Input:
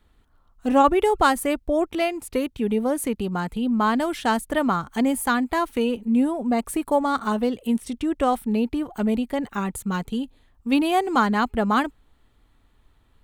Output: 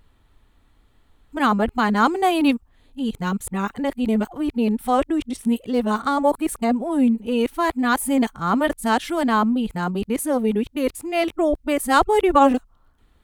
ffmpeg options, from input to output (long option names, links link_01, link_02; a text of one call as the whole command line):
ffmpeg -i in.wav -af "areverse,volume=2dB" out.wav